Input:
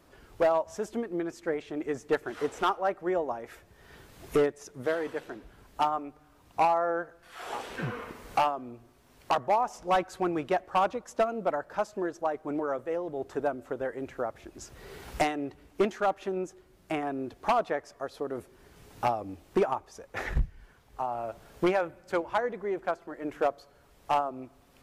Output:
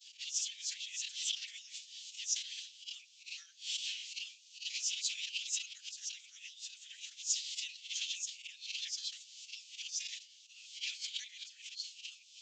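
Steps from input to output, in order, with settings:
peak hold with a rise ahead of every peak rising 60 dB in 0.42 s
downsampling to 16,000 Hz
noise gate with hold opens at −50 dBFS
spectral tilt +2 dB per octave
volume swells 220 ms
flanger 0.35 Hz, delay 10 ms, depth 9.4 ms, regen −12%
phase-vocoder stretch with locked phases 0.5×
Butterworth high-pass 2,900 Hz 48 dB per octave
level that may fall only so fast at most 140 dB per second
level +14.5 dB

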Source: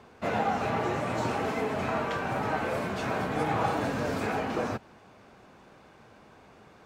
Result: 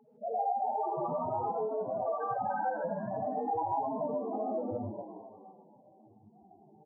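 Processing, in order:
mains-hum notches 60/120/180/240/300/360/420/480/540 Hz
spectral peaks only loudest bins 1
on a send: echo with shifted repeats 250 ms, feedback 39%, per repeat +89 Hz, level −12 dB
on the sum: reverb whose tail is shaped and stops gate 180 ms rising, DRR −2.5 dB
downward compressor 4 to 1, threshold −38 dBFS, peak gain reduction 8 dB
parametric band 970 Hz +5.5 dB 2.1 octaves
level +4 dB

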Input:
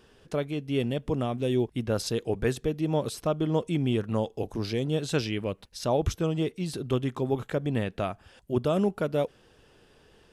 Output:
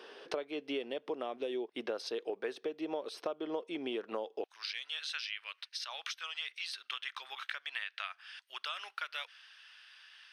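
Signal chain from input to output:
high-pass filter 360 Hz 24 dB per octave, from 0:04.44 1,500 Hz
downward compressor 8 to 1, threshold −44 dBFS, peak gain reduction 21 dB
Savitzky-Golay smoothing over 15 samples
level +9 dB

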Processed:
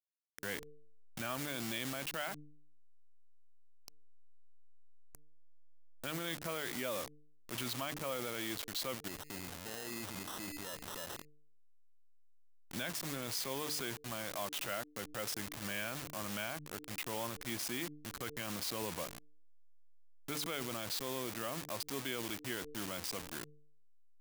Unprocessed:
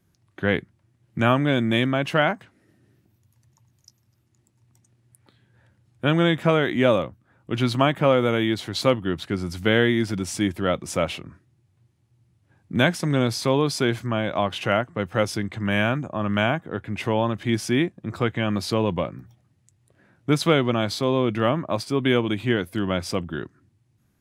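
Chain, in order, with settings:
hold until the input has moved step −27.5 dBFS
hum removal 149 Hz, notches 3
0:09.08–0:11.25: sample-rate reduction 2,300 Hz, jitter 0%
spectral tilt +3 dB per octave
brickwall limiter −26.5 dBFS, peak gain reduction 29 dB
level −1 dB

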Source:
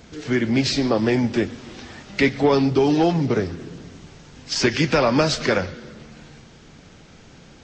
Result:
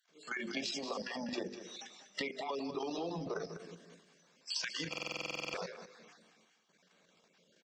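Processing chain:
time-frequency cells dropped at random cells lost 28%
noise reduction from a noise print of the clip's start 18 dB
elliptic high-pass filter 170 Hz, stop band 40 dB
noise gate −54 dBFS, range −6 dB
low-shelf EQ 420 Hz −7 dB
mains-hum notches 50/100/150/200/250/300/350/400/450/500 Hz
comb filter 1.8 ms, depth 32%
output level in coarse steps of 13 dB
transient designer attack −2 dB, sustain +10 dB
downward compressor 10 to 1, threshold −46 dBFS, peak gain reduction 22.5 dB
repeating echo 198 ms, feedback 15%, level −11 dB
buffer that repeats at 0:04.89, samples 2,048, times 13
level +9 dB

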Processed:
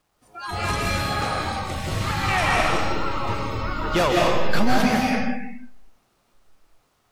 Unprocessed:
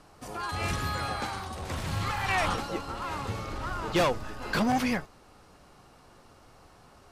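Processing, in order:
bit reduction 9 bits
comb and all-pass reverb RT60 1.5 s, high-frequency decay 0.9×, pre-delay 115 ms, DRR −3 dB
noise reduction from a noise print of the clip's start 20 dB
level +3.5 dB

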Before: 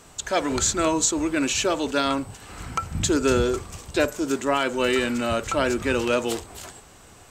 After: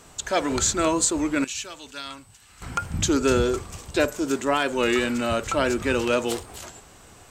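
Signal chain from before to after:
0:01.44–0:02.62: guitar amp tone stack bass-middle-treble 5-5-5
wow of a warped record 33 1/3 rpm, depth 100 cents

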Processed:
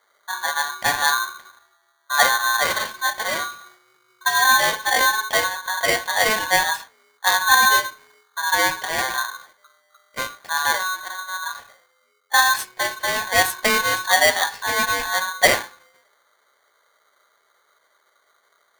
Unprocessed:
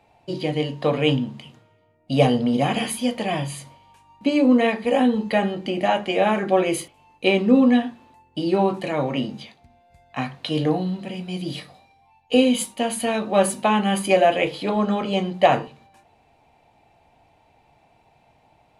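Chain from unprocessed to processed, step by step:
low-pass that shuts in the quiet parts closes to 480 Hz, open at −15 dBFS
ring modulator with a square carrier 1,300 Hz

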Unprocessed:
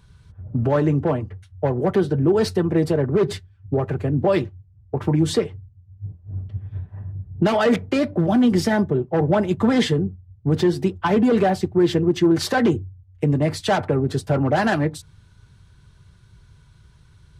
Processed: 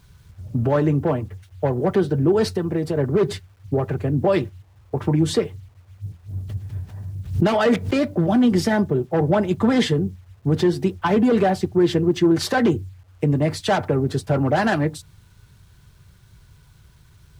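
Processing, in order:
0:02.45–0:02.97: downward compressor 3 to 1, threshold −20 dBFS, peak gain reduction 5 dB
bit-depth reduction 10 bits, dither none
0:06.36–0:08.02: background raised ahead of every attack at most 110 dB per second

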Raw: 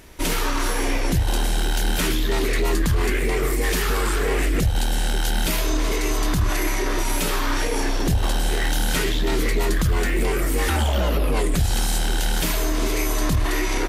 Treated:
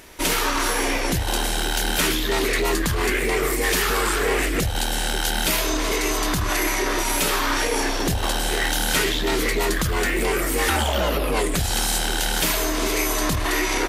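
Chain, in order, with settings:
low-shelf EQ 240 Hz −10 dB
level +4 dB

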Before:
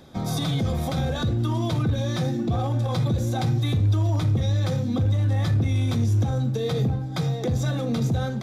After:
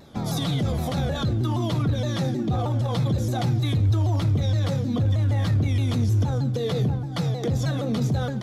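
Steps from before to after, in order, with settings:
pitch modulation by a square or saw wave saw down 6.4 Hz, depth 160 cents

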